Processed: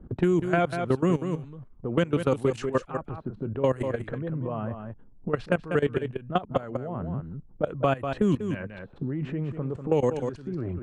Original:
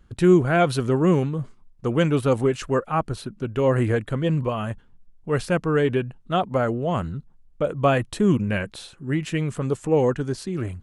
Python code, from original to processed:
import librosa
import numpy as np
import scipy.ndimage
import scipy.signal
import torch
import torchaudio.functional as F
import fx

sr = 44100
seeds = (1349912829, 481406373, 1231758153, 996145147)

y = fx.level_steps(x, sr, step_db=19)
y = fx.env_lowpass(y, sr, base_hz=480.0, full_db=-21.0)
y = y + 10.0 ** (-9.5 / 20.0) * np.pad(y, (int(193 * sr / 1000.0), 0))[:len(y)]
y = fx.band_squash(y, sr, depth_pct=70)
y = F.gain(torch.from_numpy(y), -1.0).numpy()